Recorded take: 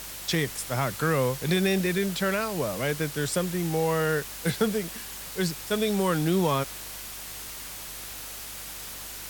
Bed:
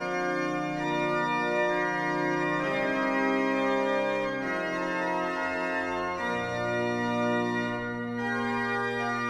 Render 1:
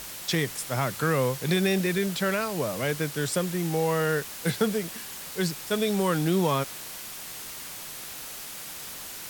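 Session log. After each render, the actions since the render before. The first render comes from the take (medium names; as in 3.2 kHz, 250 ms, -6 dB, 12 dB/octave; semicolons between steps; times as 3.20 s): de-hum 50 Hz, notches 2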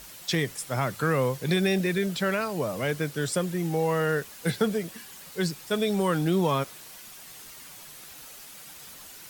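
noise reduction 8 dB, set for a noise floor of -40 dBFS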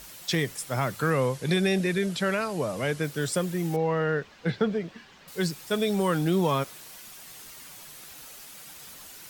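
1.10–3.04 s: steep low-pass 12 kHz 48 dB/octave; 3.76–5.28 s: distance through air 190 m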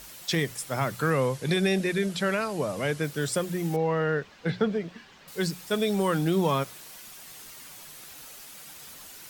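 hum notches 60/120/180 Hz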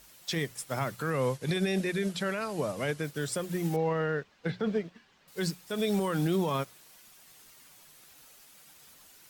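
peak limiter -19.5 dBFS, peak gain reduction 7.5 dB; upward expansion 1.5:1, over -48 dBFS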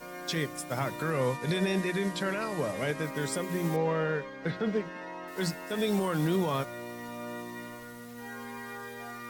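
add bed -12.5 dB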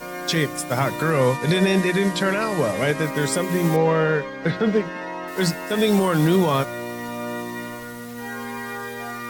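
trim +10 dB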